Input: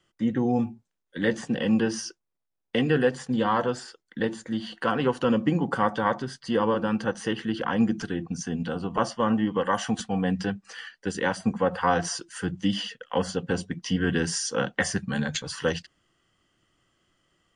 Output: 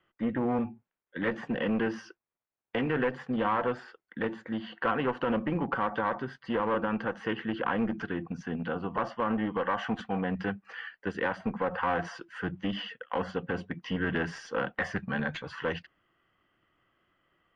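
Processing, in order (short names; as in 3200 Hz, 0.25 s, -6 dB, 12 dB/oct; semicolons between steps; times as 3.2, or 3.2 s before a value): one-sided clip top -24 dBFS, bottom -11 dBFS; limiter -16 dBFS, peak gain reduction 5 dB; EQ curve 150 Hz 0 dB, 1200 Hz +7 dB, 2400 Hz +5 dB, 8800 Hz -26 dB; gain -5.5 dB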